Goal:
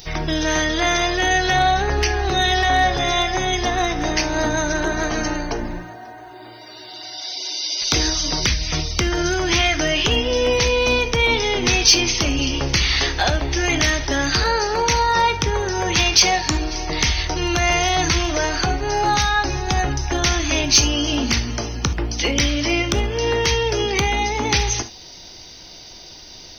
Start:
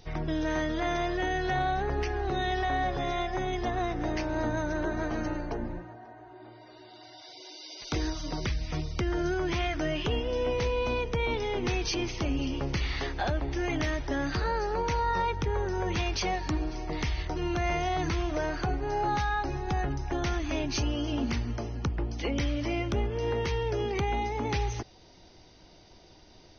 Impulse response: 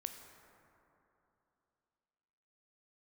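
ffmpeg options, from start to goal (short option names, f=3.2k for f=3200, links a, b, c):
-filter_complex "[0:a]crystalizer=i=6.5:c=0,acontrast=48[a];[1:a]atrim=start_sample=2205,atrim=end_sample=3528[b];[a][b]afir=irnorm=-1:irlink=0,volume=5dB"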